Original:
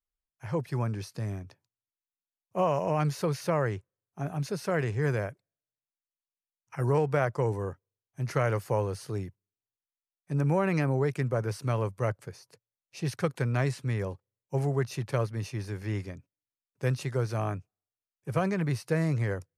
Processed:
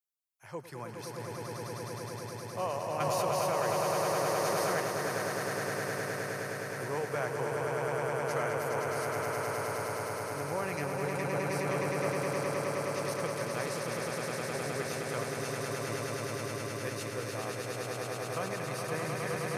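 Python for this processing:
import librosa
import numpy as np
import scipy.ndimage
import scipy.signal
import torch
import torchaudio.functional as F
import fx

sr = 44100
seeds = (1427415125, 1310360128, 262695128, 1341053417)

y = fx.highpass(x, sr, hz=550.0, slope=6)
y = fx.high_shelf(y, sr, hz=6900.0, db=10.0)
y = fx.echo_swell(y, sr, ms=104, loudest=8, wet_db=-4)
y = fx.env_flatten(y, sr, amount_pct=100, at=(3.0, 4.8))
y = y * 10.0 ** (-5.5 / 20.0)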